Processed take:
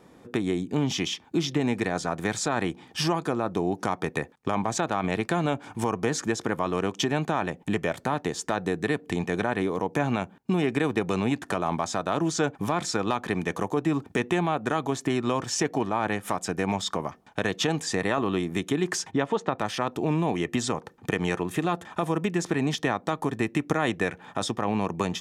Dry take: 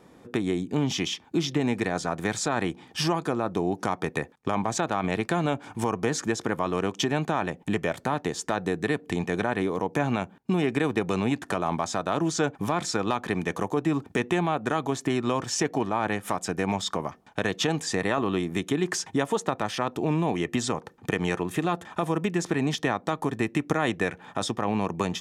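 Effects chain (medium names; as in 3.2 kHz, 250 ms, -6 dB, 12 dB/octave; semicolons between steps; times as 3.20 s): 19.11–19.59 s: low-pass 3.8 kHz 12 dB/octave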